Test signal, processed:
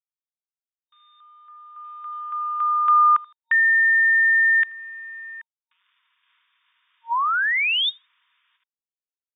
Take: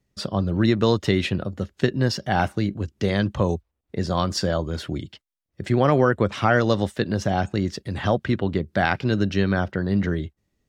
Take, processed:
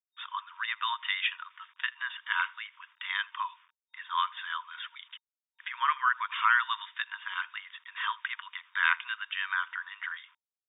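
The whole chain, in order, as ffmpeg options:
-filter_complex "[0:a]asplit=2[a][b];[b]adelay=81,lowpass=f=2.7k:p=1,volume=-23.5dB,asplit=2[c][d];[d]adelay=81,lowpass=f=2.7k:p=1,volume=0.22[e];[a][c][e]amix=inputs=3:normalize=0,acrusher=bits=8:mix=0:aa=0.000001,afftfilt=real='re*between(b*sr/4096,920,3700)':imag='im*between(b*sr/4096,920,3700)':win_size=4096:overlap=0.75"

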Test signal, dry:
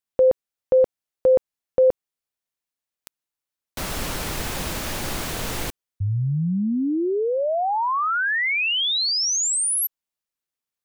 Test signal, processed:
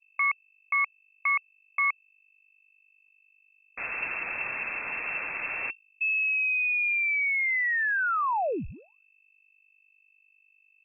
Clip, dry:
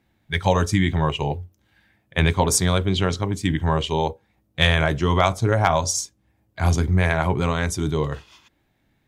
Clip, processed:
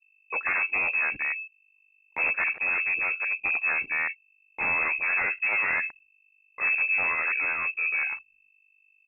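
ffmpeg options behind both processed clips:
-af "agate=range=-7dB:threshold=-44dB:ratio=16:release=58:detection=peak,aeval=exprs='val(0)+0.00355*(sin(2*PI*50*n/s)+sin(2*PI*2*50*n/s)/2+sin(2*PI*3*50*n/s)/3+sin(2*PI*4*50*n/s)/4+sin(2*PI*5*50*n/s)/5)':c=same,aresample=16000,aeval=exprs='0.168*(abs(mod(val(0)/0.168+3,4)-2)-1)':c=same,aresample=44100,lowpass=f=2.3k:t=q:w=0.5098,lowpass=f=2.3k:t=q:w=0.6013,lowpass=f=2.3k:t=q:w=0.9,lowpass=f=2.3k:t=q:w=2.563,afreqshift=-2700,anlmdn=0.631,volume=-4dB"

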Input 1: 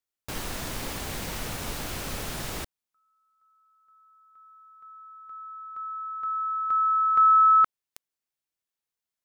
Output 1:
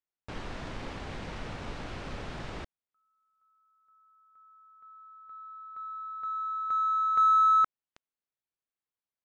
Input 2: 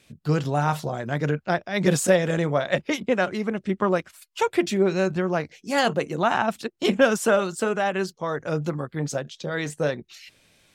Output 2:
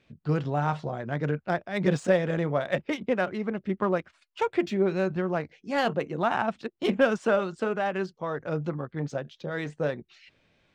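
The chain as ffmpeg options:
-af "aresample=22050,aresample=44100,aemphasis=mode=reproduction:type=50fm,adynamicsmooth=sensitivity=4:basefreq=5.2k,volume=-4dB"

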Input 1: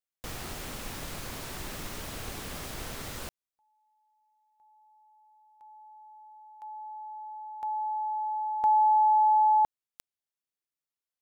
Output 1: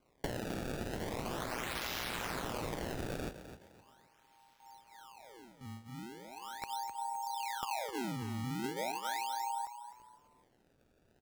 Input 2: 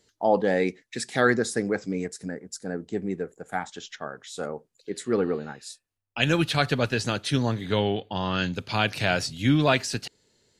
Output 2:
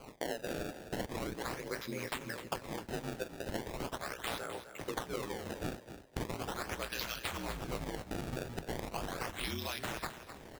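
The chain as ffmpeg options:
-filter_complex "[0:a]flanger=delay=17:depth=3:speed=0.48,aeval=exprs='val(0)*sin(2*PI*60*n/s)':c=same,acrossover=split=630[a][b];[b]crystalizer=i=5.5:c=0[c];[a][c]amix=inputs=2:normalize=0,lowshelf=f=310:g=-8.5,alimiter=limit=-16.5dB:level=0:latency=1:release=132,asubboost=boost=2.5:cutoff=110,acrusher=samples=24:mix=1:aa=0.000001:lfo=1:lforange=38.4:lforate=0.39,acompressor=threshold=-46dB:ratio=12:attack=22:release=221:knee=1:detection=rms,asplit=2[d][e];[e]asplit=3[f][g][h];[f]adelay=257,afreqshift=31,volume=-11dB[i];[g]adelay=514,afreqshift=62,volume=-21.2dB[j];[h]adelay=771,afreqshift=93,volume=-31.3dB[k];[i][j][k]amix=inputs=3:normalize=0[l];[d][l]amix=inputs=2:normalize=0,volume=10dB"

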